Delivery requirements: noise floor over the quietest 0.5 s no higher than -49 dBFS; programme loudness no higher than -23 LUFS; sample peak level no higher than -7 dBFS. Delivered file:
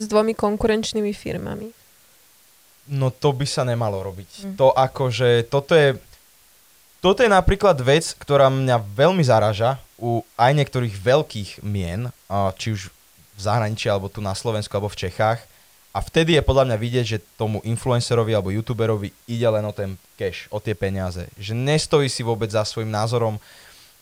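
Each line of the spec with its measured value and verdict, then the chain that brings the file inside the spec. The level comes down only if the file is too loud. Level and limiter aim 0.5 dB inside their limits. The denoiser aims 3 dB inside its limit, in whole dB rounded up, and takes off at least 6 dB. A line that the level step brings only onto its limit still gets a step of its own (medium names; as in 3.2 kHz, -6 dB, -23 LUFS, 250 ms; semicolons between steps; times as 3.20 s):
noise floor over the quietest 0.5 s -54 dBFS: pass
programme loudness -21.0 LUFS: fail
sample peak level -4.5 dBFS: fail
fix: trim -2.5 dB; peak limiter -7.5 dBFS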